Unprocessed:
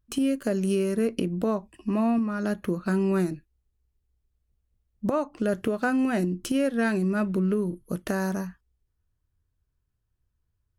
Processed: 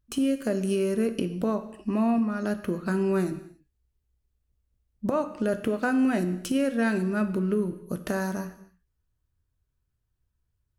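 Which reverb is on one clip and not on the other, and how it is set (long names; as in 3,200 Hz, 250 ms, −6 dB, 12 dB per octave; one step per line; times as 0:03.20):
reverb whose tail is shaped and stops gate 310 ms falling, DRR 9.5 dB
level −1 dB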